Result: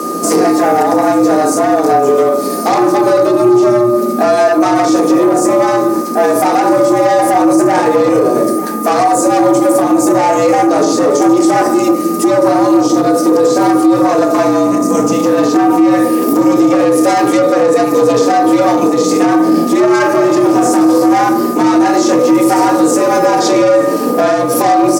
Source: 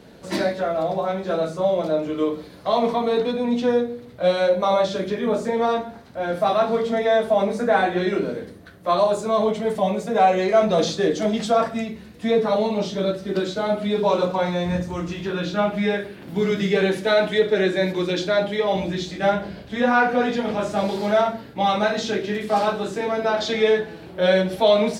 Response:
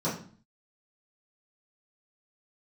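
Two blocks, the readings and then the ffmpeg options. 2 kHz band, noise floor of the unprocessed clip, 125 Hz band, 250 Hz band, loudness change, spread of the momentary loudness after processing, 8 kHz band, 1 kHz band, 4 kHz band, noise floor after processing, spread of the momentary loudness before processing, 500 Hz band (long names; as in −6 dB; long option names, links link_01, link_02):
+6.0 dB, −42 dBFS, +5.0 dB, +15.5 dB, +11.5 dB, 2 LU, +20.0 dB, +12.0 dB, +4.0 dB, −15 dBFS, 7 LU, +9.5 dB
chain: -filter_complex "[0:a]acrossover=split=3100[link_01][link_02];[link_02]acompressor=threshold=-42dB:ratio=4:attack=1:release=60[link_03];[link_01][link_03]amix=inputs=2:normalize=0,equalizer=frequency=150:width=0.38:gain=13.5,bandreject=frequency=74.49:width_type=h:width=4,bandreject=frequency=148.98:width_type=h:width=4,bandreject=frequency=223.47:width_type=h:width=4,bandreject=frequency=297.96:width_type=h:width=4,bandreject=frequency=372.45:width_type=h:width=4,bandreject=frequency=446.94:width_type=h:width=4,bandreject=frequency=521.43:width_type=h:width=4,bandreject=frequency=595.92:width_type=h:width=4,bandreject=frequency=670.41:width_type=h:width=4,bandreject=frequency=744.9:width_type=h:width=4,bandreject=frequency=819.39:width_type=h:width=4,bandreject=frequency=893.88:width_type=h:width=4,bandreject=frequency=968.37:width_type=h:width=4,bandreject=frequency=1042.86:width_type=h:width=4,bandreject=frequency=1117.35:width_type=h:width=4,bandreject=frequency=1191.84:width_type=h:width=4,bandreject=frequency=1266.33:width_type=h:width=4,bandreject=frequency=1340.82:width_type=h:width=4,bandreject=frequency=1415.31:width_type=h:width=4,bandreject=frequency=1489.8:width_type=h:width=4,bandreject=frequency=1564.29:width_type=h:width=4,bandreject=frequency=1638.78:width_type=h:width=4,bandreject=frequency=1713.27:width_type=h:width=4,bandreject=frequency=1787.76:width_type=h:width=4,bandreject=frequency=1862.25:width_type=h:width=4,bandreject=frequency=1936.74:width_type=h:width=4,bandreject=frequency=2011.23:width_type=h:width=4,bandreject=frequency=2085.72:width_type=h:width=4,bandreject=frequency=2160.21:width_type=h:width=4,bandreject=frequency=2234.7:width_type=h:width=4,acompressor=threshold=-19dB:ratio=3,asoftclip=type=tanh:threshold=-20.5dB,aexciter=amount=10.9:drive=4.2:freq=5200,aeval=exprs='val(0)+0.0251*sin(2*PI*1100*n/s)':channel_layout=same,afreqshift=120,aecho=1:1:889:0.1,asplit=2[link_04][link_05];[1:a]atrim=start_sample=2205,lowpass=3000[link_06];[link_05][link_06]afir=irnorm=-1:irlink=0,volume=-17dB[link_07];[link_04][link_07]amix=inputs=2:normalize=0,alimiter=level_in=15.5dB:limit=-1dB:release=50:level=0:latency=1,volume=-1dB" -ar 48000 -c:a libopus -b:a 256k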